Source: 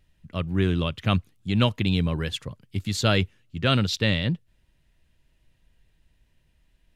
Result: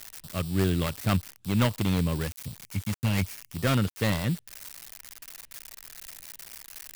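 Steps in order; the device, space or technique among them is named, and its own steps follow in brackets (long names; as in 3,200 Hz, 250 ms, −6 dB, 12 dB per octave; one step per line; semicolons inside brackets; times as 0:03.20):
0:02.27–0:03.56: drawn EQ curve 250 Hz 0 dB, 360 Hz −12 dB, 800 Hz −16 dB, 1,400 Hz −19 dB, 2,200 Hz +5 dB, 3,700 Hz −9 dB, 5,900 Hz +8 dB, 10,000 Hz +10 dB
budget class-D amplifier (gap after every zero crossing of 0.23 ms; spike at every zero crossing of −20 dBFS)
level −2 dB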